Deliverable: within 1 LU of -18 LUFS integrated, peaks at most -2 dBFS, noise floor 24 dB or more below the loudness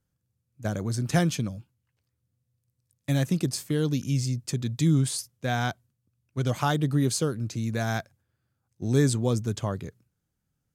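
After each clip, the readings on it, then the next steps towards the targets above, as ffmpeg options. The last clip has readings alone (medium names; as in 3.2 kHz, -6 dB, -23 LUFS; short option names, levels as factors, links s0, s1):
loudness -27.5 LUFS; peak level -10.5 dBFS; loudness target -18.0 LUFS
-> -af "volume=2.99,alimiter=limit=0.794:level=0:latency=1"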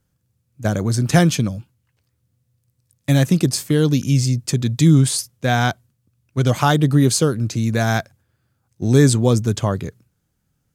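loudness -18.0 LUFS; peak level -2.0 dBFS; noise floor -70 dBFS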